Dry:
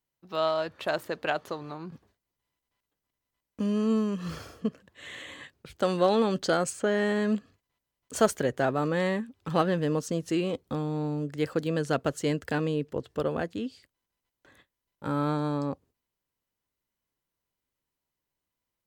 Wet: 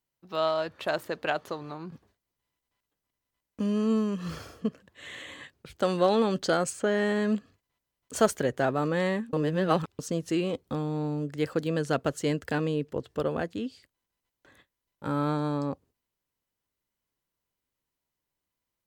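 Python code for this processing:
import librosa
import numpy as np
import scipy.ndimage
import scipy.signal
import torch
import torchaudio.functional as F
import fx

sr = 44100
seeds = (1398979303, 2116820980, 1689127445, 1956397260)

y = fx.edit(x, sr, fx.reverse_span(start_s=9.33, length_s=0.66), tone=tone)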